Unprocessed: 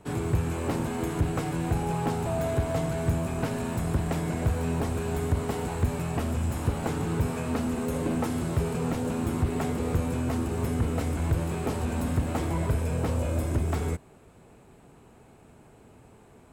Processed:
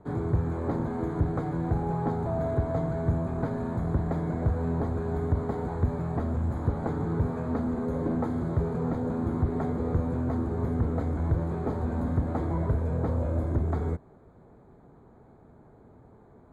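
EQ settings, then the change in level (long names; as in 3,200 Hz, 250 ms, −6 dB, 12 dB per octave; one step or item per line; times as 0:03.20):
moving average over 16 samples
0.0 dB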